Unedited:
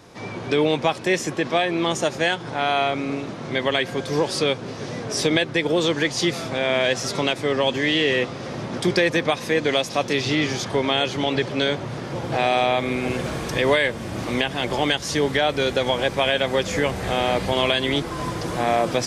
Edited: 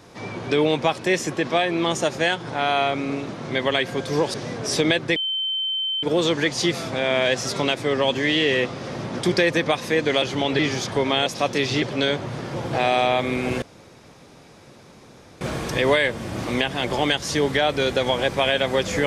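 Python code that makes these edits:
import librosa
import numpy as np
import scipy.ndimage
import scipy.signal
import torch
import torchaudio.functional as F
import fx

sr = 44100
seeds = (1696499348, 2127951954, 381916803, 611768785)

y = fx.edit(x, sr, fx.cut(start_s=4.34, length_s=0.46),
    fx.insert_tone(at_s=5.62, length_s=0.87, hz=3090.0, db=-22.0),
    fx.swap(start_s=9.81, length_s=0.56, other_s=11.04, other_length_s=0.37),
    fx.insert_room_tone(at_s=13.21, length_s=1.79), tone=tone)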